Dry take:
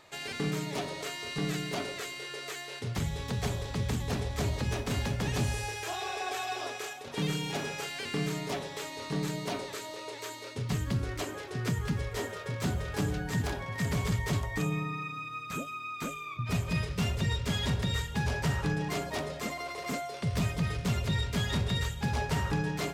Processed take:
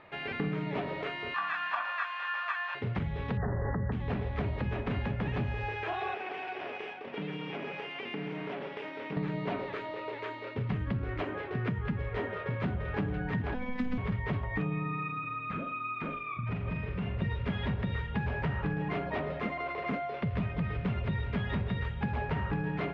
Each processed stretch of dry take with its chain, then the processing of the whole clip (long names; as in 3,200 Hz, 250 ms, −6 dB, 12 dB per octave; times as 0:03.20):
0:01.34–0:02.75: high-pass with resonance 1,200 Hz, resonance Q 15 + comb filter 1.2 ms, depth 82%
0:03.37–0:03.92: linear-phase brick-wall low-pass 2,000 Hz + envelope flattener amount 100%
0:06.14–0:09.17: lower of the sound and its delayed copy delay 0.37 ms + high-pass filter 230 Hz + downward compressor, threshold −36 dBFS
0:13.54–0:13.98: high-pass filter 88 Hz + phases set to zero 251 Hz + bass and treble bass +14 dB, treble +11 dB
0:15.19–0:17.22: high-shelf EQ 7,500 Hz −10.5 dB + downward compressor, threshold −35 dBFS + flutter between parallel walls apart 7.5 metres, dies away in 0.42 s
whole clip: low-pass filter 2,600 Hz 24 dB per octave; parametric band 200 Hz +5 dB 0.2 octaves; downward compressor 4 to 1, threshold −33 dBFS; level +3.5 dB